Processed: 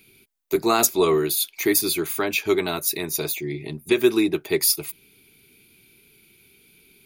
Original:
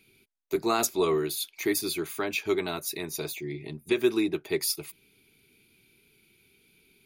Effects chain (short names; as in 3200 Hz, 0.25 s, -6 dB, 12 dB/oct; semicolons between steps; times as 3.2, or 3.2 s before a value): high shelf 11000 Hz +8.5 dB; gain +6 dB